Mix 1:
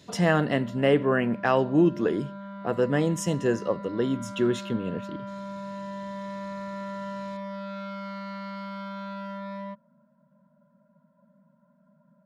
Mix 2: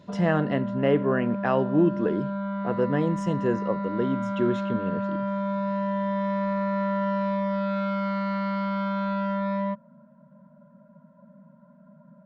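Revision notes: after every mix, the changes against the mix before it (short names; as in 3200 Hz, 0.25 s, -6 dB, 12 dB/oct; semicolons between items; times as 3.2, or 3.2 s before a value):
background +10.5 dB; master: add tape spacing loss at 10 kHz 21 dB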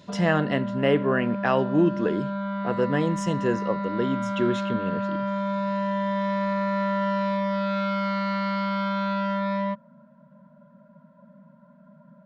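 master: add high shelf 2000 Hz +10 dB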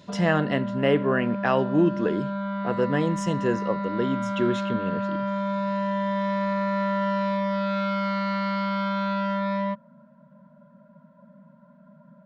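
none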